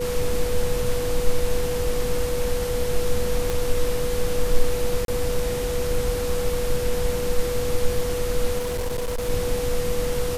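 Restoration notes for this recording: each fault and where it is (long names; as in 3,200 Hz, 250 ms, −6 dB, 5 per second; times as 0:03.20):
whistle 490 Hz −25 dBFS
0:03.50: click
0:05.05–0:05.08: drop-out 32 ms
0:08.58–0:09.30: clipping −22.5 dBFS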